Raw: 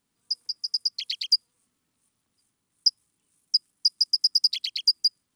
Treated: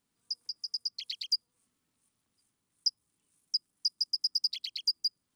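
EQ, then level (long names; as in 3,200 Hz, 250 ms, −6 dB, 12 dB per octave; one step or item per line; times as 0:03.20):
dynamic equaliser 8,800 Hz, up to −7 dB, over −37 dBFS, Q 0.76
dynamic equaliser 2,300 Hz, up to −5 dB, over −40 dBFS, Q 0.71
−3.5 dB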